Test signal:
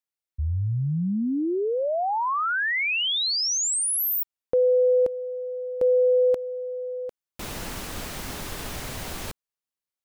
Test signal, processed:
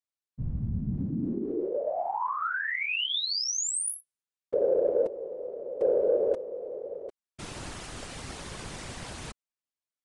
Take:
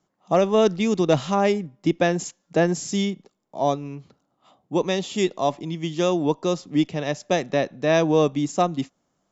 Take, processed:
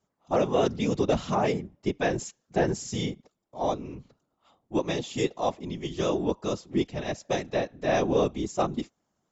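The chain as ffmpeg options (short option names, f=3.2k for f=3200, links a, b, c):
-af "afftfilt=real='hypot(re,im)*cos(2*PI*random(0))':imag='hypot(re,im)*sin(2*PI*random(1))':win_size=512:overlap=0.75,aresample=22050,aresample=44100,aeval=exprs='0.316*(cos(1*acos(clip(val(0)/0.316,-1,1)))-cos(1*PI/2))+0.00501*(cos(5*acos(clip(val(0)/0.316,-1,1)))-cos(5*PI/2))':c=same"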